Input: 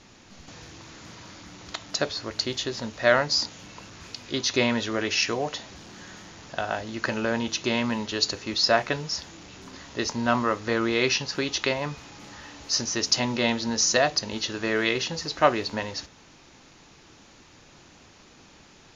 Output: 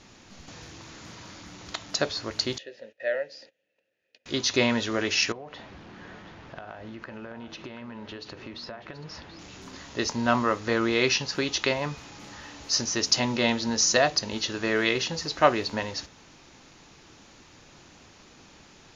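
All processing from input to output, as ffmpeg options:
ffmpeg -i in.wav -filter_complex "[0:a]asettb=1/sr,asplit=3[link_01][link_02][link_03];[link_01]atrim=end=2.584[link_04];[link_02]atrim=start=2.58:end=4.26,asetpts=PTS-STARTPTS,afade=type=in:duration=0.004:curve=qsin,afade=type=out:start_time=1.676:duration=0.004:curve=qsin,agate=range=-20dB:threshold=-40dB:ratio=16:release=100:detection=peak,asplit=3[link_05][link_06][link_07];[link_05]bandpass=frequency=530:width_type=q:width=8,volume=0dB[link_08];[link_06]bandpass=frequency=1840:width_type=q:width=8,volume=-6dB[link_09];[link_07]bandpass=frequency=2480:width_type=q:width=8,volume=-9dB[link_10];[link_08][link_09][link_10]amix=inputs=3:normalize=0[link_11];[link_03]atrim=start=4.256[link_12];[link_04][link_11]acrossfade=duration=0.004:curve1=hsin:curve2=qsin[link_13];[link_13][link_12]acrossfade=duration=0.004:curve1=qsin:curve2=hsin,asettb=1/sr,asplit=3[link_14][link_15][link_16];[link_14]atrim=end=5.324[link_17];[link_15]atrim=start=5.32:end=9.39,asetpts=PTS-STARTPTS,afade=type=in:duration=0.004:curve=qsin,afade=type=out:start_time=4.066:duration=0.004:curve=qsin,lowpass=2500,acompressor=threshold=-36dB:ratio=12:attack=3.2:release=140:knee=1:detection=peak,aecho=1:1:731:0.237,atrim=end_sample=179487[link_18];[link_16]atrim=start=9.386[link_19];[link_17][link_18]acrossfade=duration=0.004:curve1=hsin:curve2=qsin[link_20];[link_20][link_19]acrossfade=duration=0.004:curve1=qsin:curve2=hsin" out.wav

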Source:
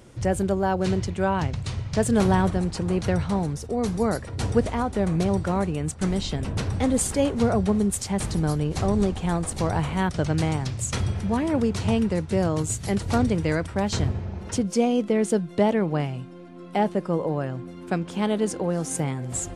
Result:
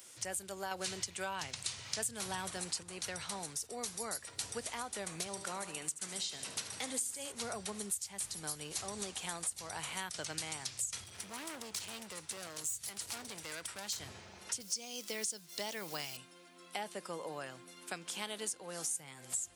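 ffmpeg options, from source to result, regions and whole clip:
ffmpeg -i in.wav -filter_complex "[0:a]asettb=1/sr,asplit=3[link_01][link_02][link_03];[link_01]atrim=end=0.714[link_04];[link_02]atrim=start=0.71:end=2.83,asetpts=PTS-STARTPTS,afade=type=in:duration=0.004:curve=qsin,afade=type=out:start_time=2.116:duration=0.004:curve=qsin,lowshelf=frequency=80:gain=-11,acontrast=90[link_05];[link_03]atrim=start=2.826[link_06];[link_04][link_05]acrossfade=duration=0.004:curve1=hsin:curve2=qsin[link_07];[link_07][link_06]acrossfade=duration=0.004:curve1=qsin:curve2=hsin,asettb=1/sr,asplit=3[link_08][link_09][link_10];[link_08]atrim=end=5.274[link_11];[link_09]atrim=start=5.27:end=7.32,asetpts=PTS-STARTPTS,afade=type=in:duration=0.004:curve=qsin,afade=type=out:start_time=2.046:duration=0.004:curve=qsin,highpass=120,aecho=1:1:73|146|219|292|365|438:0.237|0.13|0.0717|0.0395|0.0217|0.0119,atrim=end_sample=90405[link_12];[link_10]atrim=start=7.316[link_13];[link_11][link_12]acrossfade=duration=0.004:curve1=hsin:curve2=qsin[link_14];[link_14][link_13]acrossfade=duration=0.004:curve1=qsin:curve2=hsin,asettb=1/sr,asplit=3[link_15][link_16][link_17];[link_15]atrim=end=11.044[link_18];[link_16]atrim=start=11.04:end=14,asetpts=PTS-STARTPTS,afade=type=in:duration=0.004:curve=qsin,afade=type=out:start_time=2.956:duration=0.004:curve=qsin,acompressor=threshold=-26dB:ratio=3:attack=3.2:release=140:knee=1:detection=peak,asoftclip=type=hard:threshold=-27.5dB[link_19];[link_17]atrim=start=13.996[link_20];[link_18][link_19]acrossfade=duration=0.004:curve1=hsin:curve2=qsin[link_21];[link_21][link_20]acrossfade=duration=0.004:curve1=qsin:curve2=hsin,asettb=1/sr,asplit=3[link_22][link_23][link_24];[link_22]atrim=end=14.604[link_25];[link_23]atrim=start=14.6:end=16.17,asetpts=PTS-STARTPTS,afade=type=in:duration=0.004:curve=qsin,afade=type=out:start_time=1.566:duration=0.004:curve=qsin,equalizer=frequency=5400:width_type=o:width=0.97:gain=12.5,acrusher=bits=7:mix=0:aa=0.5[link_26];[link_24]atrim=start=16.166[link_27];[link_25][link_26]acrossfade=duration=0.004:curve1=hsin:curve2=qsin[link_28];[link_28][link_27]acrossfade=duration=0.004:curve1=qsin:curve2=hsin,aderivative,acrossover=split=130[link_29][link_30];[link_30]acompressor=threshold=-44dB:ratio=6[link_31];[link_29][link_31]amix=inputs=2:normalize=0,volume=7.5dB" out.wav

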